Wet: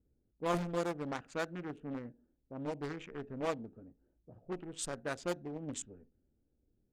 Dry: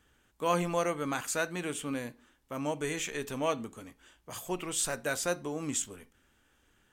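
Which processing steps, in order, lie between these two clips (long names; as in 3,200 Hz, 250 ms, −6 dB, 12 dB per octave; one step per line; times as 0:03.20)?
adaptive Wiener filter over 41 samples
low-pass that shuts in the quiet parts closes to 540 Hz, open at −27.5 dBFS
highs frequency-modulated by the lows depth 0.66 ms
level −4.5 dB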